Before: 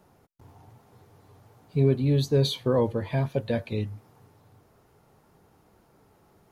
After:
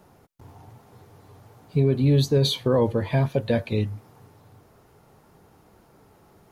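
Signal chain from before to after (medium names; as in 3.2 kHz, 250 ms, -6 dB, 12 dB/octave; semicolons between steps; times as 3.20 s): peak limiter -16 dBFS, peak gain reduction 5 dB; trim +5 dB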